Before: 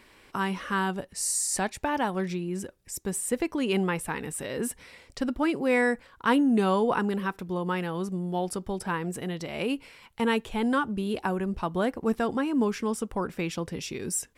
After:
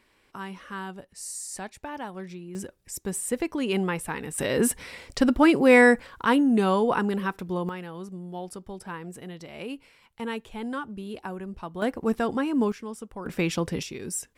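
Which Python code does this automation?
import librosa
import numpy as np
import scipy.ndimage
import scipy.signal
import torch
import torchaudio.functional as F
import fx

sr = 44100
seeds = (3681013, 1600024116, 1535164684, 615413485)

y = fx.gain(x, sr, db=fx.steps((0.0, -8.5), (2.55, 0.0), (4.38, 8.0), (6.25, 1.5), (7.69, -7.0), (11.82, 1.0), (12.72, -8.0), (13.26, 5.0), (13.83, -2.0)))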